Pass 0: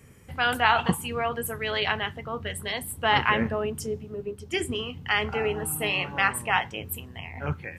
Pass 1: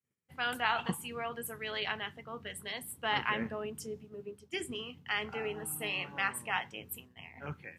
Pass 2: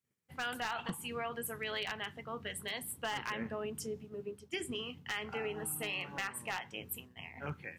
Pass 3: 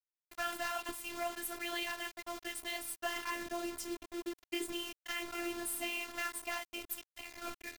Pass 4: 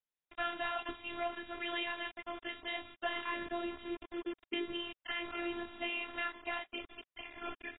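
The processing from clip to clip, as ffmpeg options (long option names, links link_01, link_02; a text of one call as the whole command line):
ffmpeg -i in.wav -af "agate=range=-33dB:threshold=-36dB:ratio=3:detection=peak,highpass=150,equalizer=frequency=640:width_type=o:width=2.2:gain=-3,volume=-8dB" out.wav
ffmpeg -i in.wav -af "acompressor=threshold=-37dB:ratio=3,aeval=exprs='0.0355*(abs(mod(val(0)/0.0355+3,4)-2)-1)':channel_layout=same,volume=2dB" out.wav
ffmpeg -i in.wav -af "flanger=delay=4.8:depth=8.6:regen=-44:speed=1.2:shape=triangular,acrusher=bits=7:mix=0:aa=0.000001,afftfilt=real='hypot(re,im)*cos(PI*b)':imag='0':win_size=512:overlap=0.75,volume=7dB" out.wav
ffmpeg -i in.wav -af "volume=1dB" -ar 16000 -c:a aac -b:a 16k out.aac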